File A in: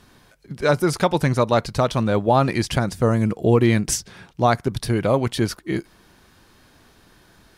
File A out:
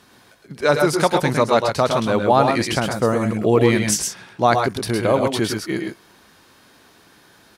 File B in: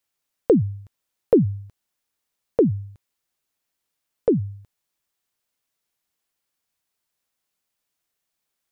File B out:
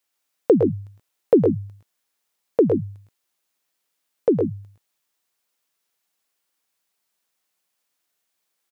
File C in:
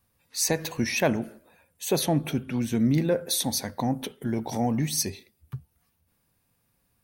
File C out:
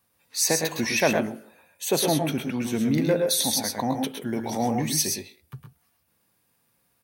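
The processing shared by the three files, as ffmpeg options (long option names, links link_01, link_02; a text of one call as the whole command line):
ffmpeg -i in.wav -af "highpass=frequency=260:poles=1,aecho=1:1:109|128:0.447|0.447,volume=2.5dB" out.wav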